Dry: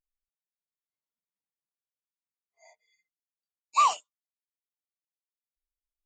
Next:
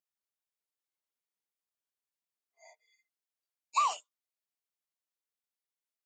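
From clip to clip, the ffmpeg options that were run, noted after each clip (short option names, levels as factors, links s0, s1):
-af "acompressor=threshold=0.0562:ratio=5,highpass=280"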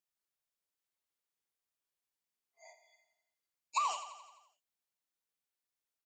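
-filter_complex "[0:a]acompressor=threshold=0.0355:ratio=6,asplit=2[s0][s1];[s1]aecho=0:1:86|172|258|344|430|516|602:0.282|0.169|0.101|0.0609|0.0365|0.0219|0.0131[s2];[s0][s2]amix=inputs=2:normalize=0"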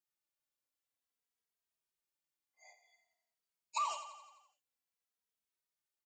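-filter_complex "[0:a]asplit=2[s0][s1];[s1]adelay=2.8,afreqshift=-0.52[s2];[s0][s2]amix=inputs=2:normalize=1"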